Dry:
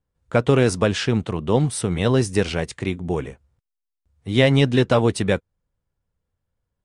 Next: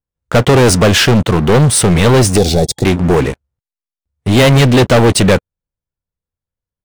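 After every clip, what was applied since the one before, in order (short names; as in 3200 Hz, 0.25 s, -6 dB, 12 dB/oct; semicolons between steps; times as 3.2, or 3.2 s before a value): sample leveller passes 5; spectral gain 2.38–2.84, 850–3300 Hz -16 dB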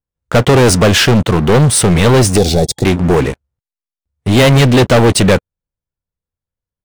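nothing audible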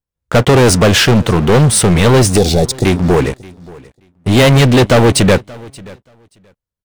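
feedback echo 0.579 s, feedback 16%, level -23 dB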